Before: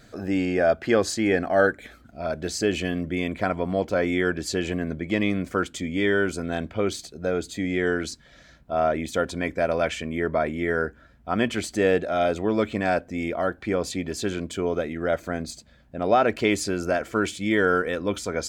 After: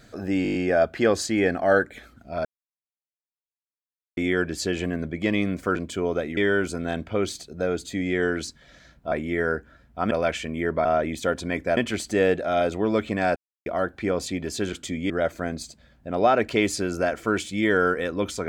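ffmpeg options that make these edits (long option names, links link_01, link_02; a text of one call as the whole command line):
ffmpeg -i in.wav -filter_complex "[0:a]asplit=19[link_01][link_02][link_03][link_04][link_05][link_06][link_07][link_08][link_09][link_10][link_11][link_12][link_13][link_14][link_15][link_16][link_17][link_18][link_19];[link_01]atrim=end=0.452[link_20];[link_02]atrim=start=0.428:end=0.452[link_21];[link_03]atrim=start=0.428:end=0.452[link_22];[link_04]atrim=start=0.428:end=0.452[link_23];[link_05]atrim=start=0.428:end=0.452[link_24];[link_06]atrim=start=0.428:end=0.452[link_25];[link_07]atrim=start=0.428:end=2.33,asetpts=PTS-STARTPTS,afade=type=out:start_time=1.898:duration=0.004:curve=hsin[link_26];[link_08]atrim=start=2.33:end=4.05,asetpts=PTS-STARTPTS,volume=0[link_27];[link_09]atrim=start=4.05:end=5.642,asetpts=PTS-STARTPTS,afade=type=in:duration=0.004:curve=hsin[link_28];[link_10]atrim=start=14.368:end=14.982[link_29];[link_11]atrim=start=6.008:end=8.762[link_30];[link_12]atrim=start=10.418:end=11.412[link_31];[link_13]atrim=start=9.678:end=10.422[link_32];[link_14]atrim=start=8.758:end=9.682[link_33];[link_15]atrim=start=11.408:end=13,asetpts=PTS-STARTPTS,afade=type=out:start_time=1.588:duration=0.004:curve=hsin[link_34];[link_16]atrim=start=13:end=13.3,asetpts=PTS-STARTPTS,volume=0[link_35];[link_17]atrim=start=13.3:end=14.372,asetpts=PTS-STARTPTS,afade=type=in:duration=0.004:curve=hsin[link_36];[link_18]atrim=start=5.638:end=6.012[link_37];[link_19]atrim=start=14.978[link_38];[link_20][link_21]acrossfade=duration=0.004:curve1=hsin:curve2=hsin[link_39];[link_39][link_22]acrossfade=duration=0.004:curve1=hsin:curve2=hsin[link_40];[link_40][link_23]acrossfade=duration=0.004:curve1=hsin:curve2=hsin[link_41];[link_41][link_24]acrossfade=duration=0.004:curve1=hsin:curve2=hsin[link_42];[link_42][link_25]acrossfade=duration=0.004:curve1=hsin:curve2=hsin[link_43];[link_26][link_27][link_28]concat=n=3:v=0:a=1[link_44];[link_43][link_44]acrossfade=duration=0.004:curve1=hsin:curve2=hsin[link_45];[link_45][link_29]acrossfade=duration=0.004:curve1=hsin:curve2=hsin[link_46];[link_46][link_30]acrossfade=duration=0.004:curve1=hsin:curve2=hsin[link_47];[link_47][link_31]acrossfade=duration=0.004:curve1=hsin:curve2=hsin[link_48];[link_48][link_32]acrossfade=duration=0.004:curve1=hsin:curve2=hsin[link_49];[link_49][link_33]acrossfade=duration=0.004:curve1=hsin:curve2=hsin[link_50];[link_34][link_35][link_36]concat=n=3:v=0:a=1[link_51];[link_50][link_51]acrossfade=duration=0.004:curve1=hsin:curve2=hsin[link_52];[link_52][link_37]acrossfade=duration=0.004:curve1=hsin:curve2=hsin[link_53];[link_53][link_38]acrossfade=duration=0.004:curve1=hsin:curve2=hsin" out.wav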